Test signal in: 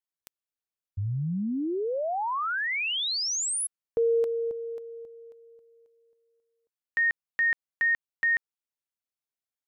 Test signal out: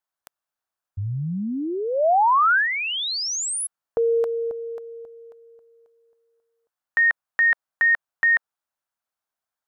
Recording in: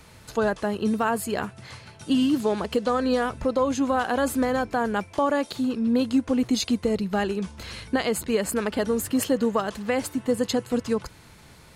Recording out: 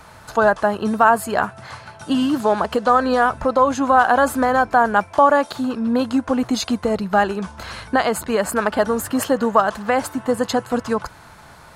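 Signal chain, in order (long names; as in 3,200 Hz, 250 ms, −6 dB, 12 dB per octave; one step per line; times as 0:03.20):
flat-topped bell 1,000 Hz +9.5 dB
level +2.5 dB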